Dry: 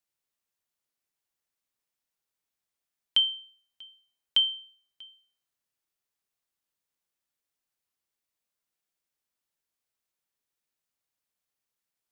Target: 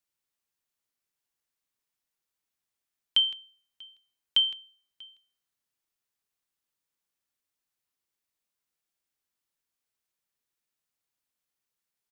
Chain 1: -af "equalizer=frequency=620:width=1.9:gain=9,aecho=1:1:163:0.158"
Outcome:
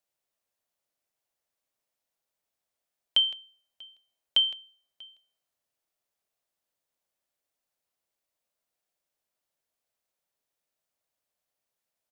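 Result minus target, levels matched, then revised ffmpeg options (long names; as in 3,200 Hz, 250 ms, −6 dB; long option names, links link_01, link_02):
500 Hz band +8.0 dB
-af "equalizer=frequency=620:width=1.9:gain=-2.5,aecho=1:1:163:0.158"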